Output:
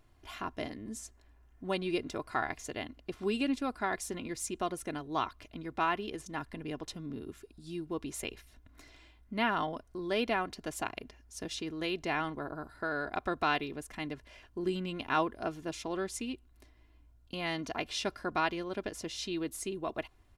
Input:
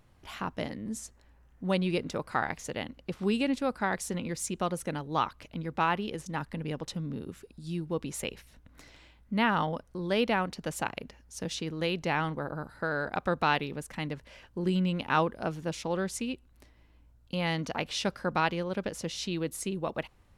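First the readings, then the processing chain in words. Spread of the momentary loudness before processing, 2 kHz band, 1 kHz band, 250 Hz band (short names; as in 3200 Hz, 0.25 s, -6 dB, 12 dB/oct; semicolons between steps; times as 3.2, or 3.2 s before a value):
11 LU, -3.0 dB, -3.0 dB, -4.5 dB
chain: comb 2.9 ms, depth 57%; gain -4 dB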